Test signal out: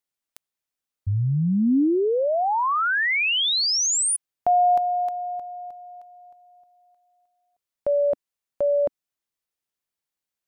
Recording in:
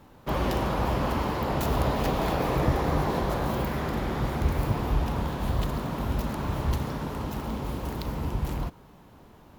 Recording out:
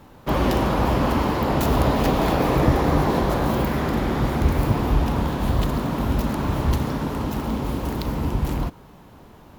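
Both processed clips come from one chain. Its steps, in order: dynamic EQ 270 Hz, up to +4 dB, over -41 dBFS, Q 2.1; gain +5.5 dB

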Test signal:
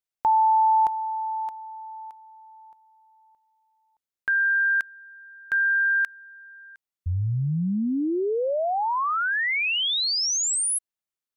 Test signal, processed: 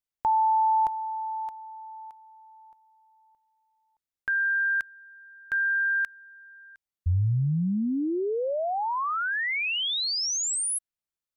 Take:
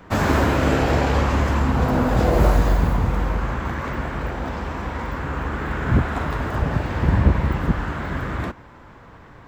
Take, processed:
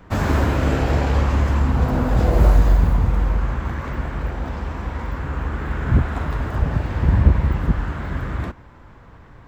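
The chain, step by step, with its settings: low shelf 110 Hz +9.5 dB; gain -3.5 dB

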